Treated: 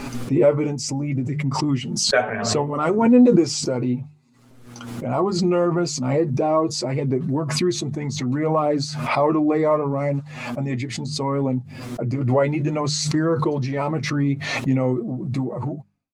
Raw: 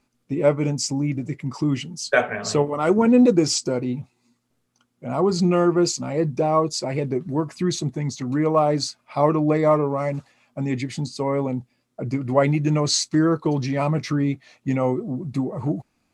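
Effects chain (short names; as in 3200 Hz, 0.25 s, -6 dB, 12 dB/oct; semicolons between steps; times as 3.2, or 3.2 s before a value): ending faded out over 0.72 s; high shelf 2500 Hz -6.5 dB; notches 50/100/150/200 Hz; flange 0.69 Hz, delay 7.1 ms, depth 2.4 ms, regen +27%; in parallel at -2 dB: limiter -18.5 dBFS, peak gain reduction 11 dB; on the sum: backwards sustainer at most 44 dB/s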